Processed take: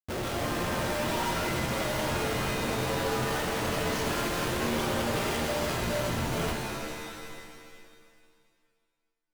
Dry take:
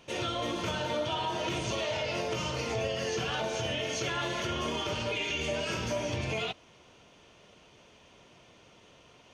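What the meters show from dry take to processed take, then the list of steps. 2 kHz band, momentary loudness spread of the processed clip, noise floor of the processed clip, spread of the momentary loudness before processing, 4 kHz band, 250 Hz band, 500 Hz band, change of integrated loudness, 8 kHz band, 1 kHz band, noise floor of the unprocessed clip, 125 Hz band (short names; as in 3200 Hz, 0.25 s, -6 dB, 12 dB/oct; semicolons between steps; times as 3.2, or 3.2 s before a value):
+3.0 dB, 7 LU, -78 dBFS, 1 LU, -1.0 dB, +5.5 dB, +2.0 dB, +2.5 dB, +4.0 dB, +4.0 dB, -58 dBFS, +4.0 dB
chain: low shelf 140 Hz +6 dB; notch 2600 Hz, Q 6.6; Schmitt trigger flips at -35 dBFS; shimmer reverb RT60 2 s, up +7 st, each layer -2 dB, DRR 1.5 dB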